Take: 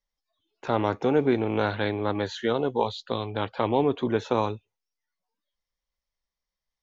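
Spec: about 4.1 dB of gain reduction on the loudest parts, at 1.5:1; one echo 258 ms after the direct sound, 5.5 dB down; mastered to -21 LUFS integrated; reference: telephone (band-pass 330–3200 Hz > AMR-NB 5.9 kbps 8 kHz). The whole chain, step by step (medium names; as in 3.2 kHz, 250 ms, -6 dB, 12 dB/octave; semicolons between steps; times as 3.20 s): compression 1.5:1, threshold -29 dBFS; band-pass 330–3200 Hz; delay 258 ms -5.5 dB; trim +11 dB; AMR-NB 5.9 kbps 8 kHz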